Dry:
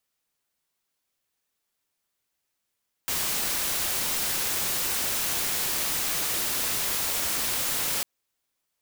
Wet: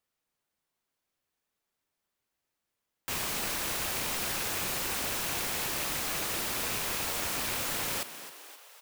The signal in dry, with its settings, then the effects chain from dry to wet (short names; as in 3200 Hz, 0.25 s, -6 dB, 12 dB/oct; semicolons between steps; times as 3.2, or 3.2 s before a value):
noise white, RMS -27.5 dBFS 4.95 s
rattling part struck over -43 dBFS, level -25 dBFS; high shelf 2500 Hz -7.5 dB; frequency-shifting echo 0.263 s, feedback 59%, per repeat +130 Hz, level -13 dB